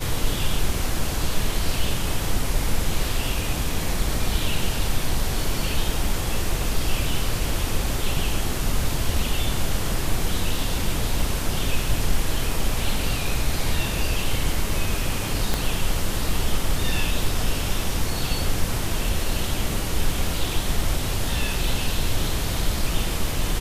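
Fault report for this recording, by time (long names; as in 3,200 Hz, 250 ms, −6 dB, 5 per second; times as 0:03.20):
0:15.54: click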